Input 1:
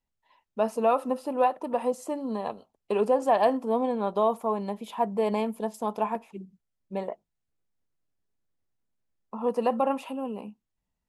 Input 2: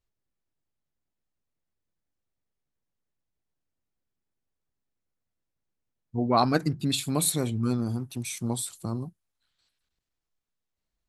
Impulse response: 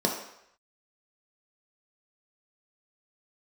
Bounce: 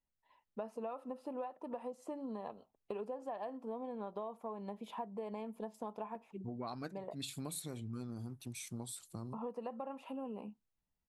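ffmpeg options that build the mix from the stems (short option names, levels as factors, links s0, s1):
-filter_complex "[0:a]highshelf=f=4000:g=-9,volume=0.501,asplit=2[s0][s1];[1:a]adelay=300,volume=0.282[s2];[s1]apad=whole_len=502061[s3];[s2][s3]sidechaincompress=threshold=0.00501:ratio=8:attack=6.7:release=119[s4];[s0][s4]amix=inputs=2:normalize=0,acompressor=threshold=0.0112:ratio=10"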